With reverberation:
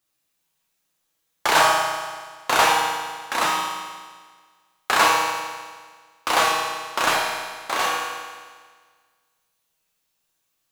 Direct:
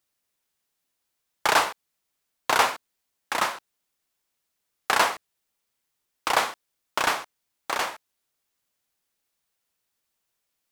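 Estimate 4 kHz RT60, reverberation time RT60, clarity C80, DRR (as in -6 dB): 1.6 s, 1.6 s, 2.0 dB, -4.0 dB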